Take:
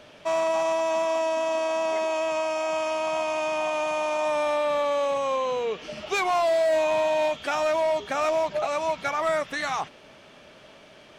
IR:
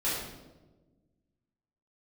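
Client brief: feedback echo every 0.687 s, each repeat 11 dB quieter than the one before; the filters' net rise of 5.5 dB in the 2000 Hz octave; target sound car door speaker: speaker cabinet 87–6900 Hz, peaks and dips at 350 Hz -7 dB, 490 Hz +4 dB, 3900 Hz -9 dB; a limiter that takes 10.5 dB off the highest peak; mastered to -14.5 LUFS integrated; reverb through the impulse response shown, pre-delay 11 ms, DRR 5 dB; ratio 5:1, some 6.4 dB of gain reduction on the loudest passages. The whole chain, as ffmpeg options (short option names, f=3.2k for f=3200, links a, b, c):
-filter_complex "[0:a]equalizer=f=2k:t=o:g=7.5,acompressor=threshold=-26dB:ratio=5,alimiter=level_in=3dB:limit=-24dB:level=0:latency=1,volume=-3dB,aecho=1:1:687|1374|2061:0.282|0.0789|0.0221,asplit=2[a][b];[1:a]atrim=start_sample=2205,adelay=11[c];[b][c]afir=irnorm=-1:irlink=0,volume=-13.5dB[d];[a][d]amix=inputs=2:normalize=0,highpass=87,equalizer=f=350:t=q:w=4:g=-7,equalizer=f=490:t=q:w=4:g=4,equalizer=f=3.9k:t=q:w=4:g=-9,lowpass=f=6.9k:w=0.5412,lowpass=f=6.9k:w=1.3066,volume=17.5dB"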